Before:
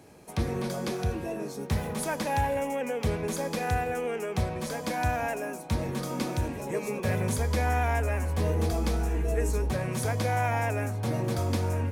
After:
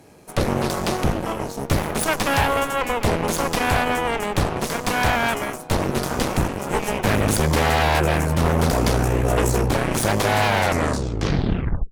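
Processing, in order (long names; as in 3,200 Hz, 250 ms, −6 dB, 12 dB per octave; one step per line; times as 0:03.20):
turntable brake at the end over 1.42 s
harmonic generator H 6 −6 dB, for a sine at −15.5 dBFS
level +4 dB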